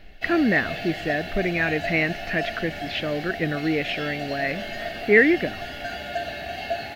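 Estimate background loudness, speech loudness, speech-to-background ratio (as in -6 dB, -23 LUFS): -32.0 LUFS, -23.5 LUFS, 8.5 dB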